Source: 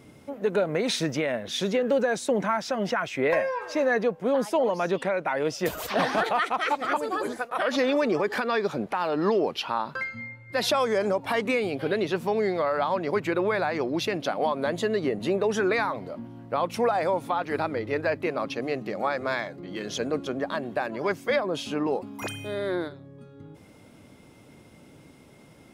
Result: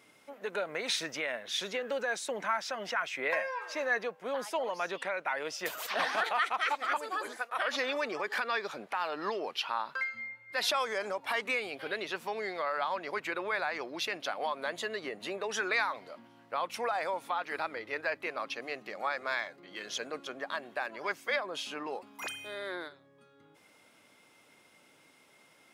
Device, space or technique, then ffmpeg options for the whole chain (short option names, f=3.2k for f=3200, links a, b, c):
filter by subtraction: -filter_complex "[0:a]asplit=2[a][b];[b]lowpass=1.7k,volume=-1[c];[a][c]amix=inputs=2:normalize=0,asettb=1/sr,asplit=3[d][e][f];[d]atrim=end=15.514[g];[e]atrim=start=15.51:end=16.51,asetpts=PTS-STARTPTS,afade=t=in:d=0.004:c=qsin,afade=t=out:st=0.996:d=0.004:c=qsin,equalizer=f=5k:w=0.61:g=3.5[h];[f]atrim=start=16.506[i];[g][h]acrossfade=d=0.004:c1=hsin:c2=qsin[j];[j][i]acrossfade=d=0.004:c1=qsin:c2=hsin,volume=-4dB"